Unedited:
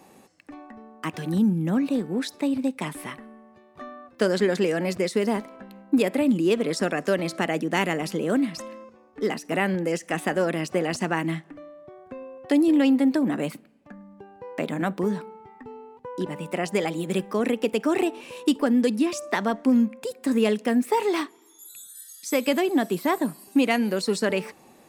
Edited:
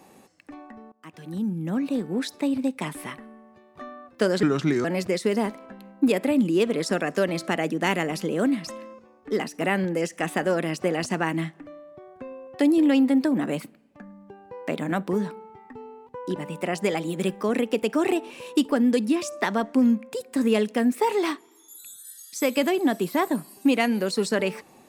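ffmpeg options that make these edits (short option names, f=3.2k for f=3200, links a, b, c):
-filter_complex "[0:a]asplit=4[a][b][c][d];[a]atrim=end=0.92,asetpts=PTS-STARTPTS,afade=t=out:st=0.916:d=0.004:c=hsin:silence=0.0794328[e];[b]atrim=start=0.92:end=4.434,asetpts=PTS-STARTPTS,afade=t=in:d=1.24:silence=0.0794328[f];[c]atrim=start=4.43:end=4.75,asetpts=PTS-STARTPTS,asetrate=33957,aresample=44100,atrim=end_sample=18327,asetpts=PTS-STARTPTS[g];[d]atrim=start=4.746[h];[e][f]concat=n=2:v=0:a=1[i];[i][g]acrossfade=d=0.004:c1=hsin:c2=hsin[j];[j][h]acrossfade=d=0.004:c1=hsin:c2=hsin"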